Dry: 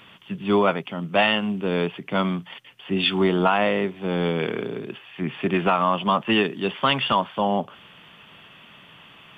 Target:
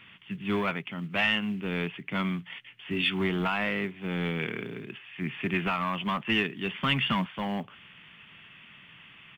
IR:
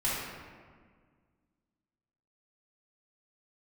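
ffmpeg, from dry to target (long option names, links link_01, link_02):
-filter_complex "[0:a]asettb=1/sr,asplit=3[link_01][link_02][link_03];[link_01]atrim=end=2.464[link_04];[link_02]atrim=start=2.46:end=3.02,asetpts=PTS-STARTPTS,afade=type=in:duration=0.004:curve=qsin,afade=type=out:start_time=0.556:duration=0.004:curve=qsin,asplit=2[link_05][link_06];[link_06]adelay=18,volume=-6dB[link_07];[link_05][link_07]amix=inputs=2:normalize=0,atrim=end_sample=24696[link_08];[link_03]atrim=start=3.016[link_09];[link_04][link_08]acrossfade=duration=0.004:curve1=hsin:curve2=qsin[link_10];[link_10][link_09]acrossfade=duration=0.004:curve1=qsin:curve2=hsin,asettb=1/sr,asplit=3[link_11][link_12][link_13];[link_11]atrim=end=6.744[link_14];[link_12]atrim=start=6.74:end=7.26,asetpts=PTS-STARTPTS,afade=type=in:duration=0.004:curve=qsin,afade=type=out:start_time=0.516:duration=0.004:curve=qsin,equalizer=frequency=190:width=1.4:gain=9.5[link_15];[link_13]atrim=start=7.256[link_16];[link_14][link_15]acrossfade=duration=0.004:curve1=hsin:curve2=qsin[link_17];[link_17][link_16]acrossfade=duration=0.004:curve1=qsin:curve2=hsin,asplit=2[link_18][link_19];[link_19]aeval=exprs='0.141*(abs(mod(val(0)/0.141+3,4)-2)-1)':channel_layout=same,volume=-8dB[link_20];[link_18][link_20]amix=inputs=2:normalize=0,acrusher=bits=7:mode=log:mix=0:aa=0.000001,firequalizer=gain_entry='entry(130,0);entry(550,-10);entry(2100,5);entry(5200,-13)':delay=0.05:min_phase=1,volume=-6.5dB"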